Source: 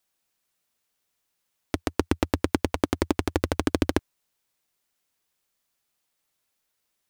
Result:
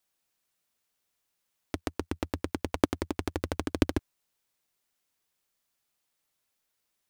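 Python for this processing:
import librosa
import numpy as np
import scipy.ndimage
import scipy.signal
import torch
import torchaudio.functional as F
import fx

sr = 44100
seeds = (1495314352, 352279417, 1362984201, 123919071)

y = fx.level_steps(x, sr, step_db=10)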